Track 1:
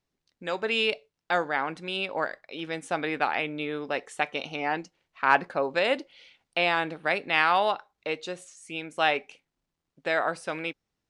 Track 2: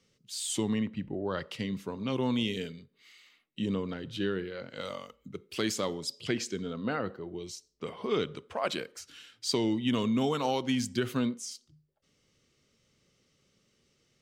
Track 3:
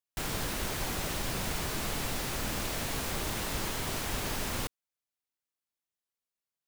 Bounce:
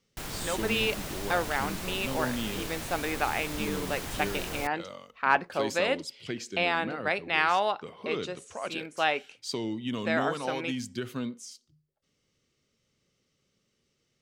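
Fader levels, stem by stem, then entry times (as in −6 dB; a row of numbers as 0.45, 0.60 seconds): −2.5, −4.5, −3.5 decibels; 0.00, 0.00, 0.00 seconds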